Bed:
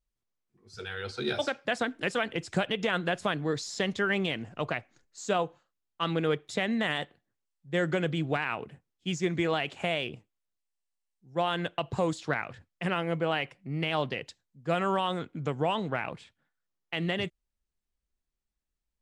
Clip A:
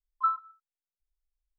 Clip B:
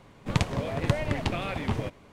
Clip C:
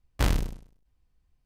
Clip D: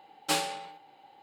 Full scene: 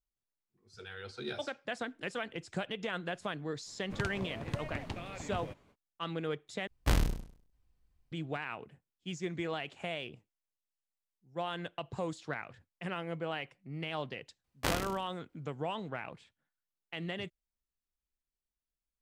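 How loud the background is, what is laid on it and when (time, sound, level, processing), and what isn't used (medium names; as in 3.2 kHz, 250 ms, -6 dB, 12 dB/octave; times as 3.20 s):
bed -8.5 dB
3.64 s: add B -12 dB, fades 0.05 s
6.67 s: replace with C -3.5 dB
14.44 s: add C -1.5 dB + high-pass 350 Hz 6 dB/octave
not used: A, D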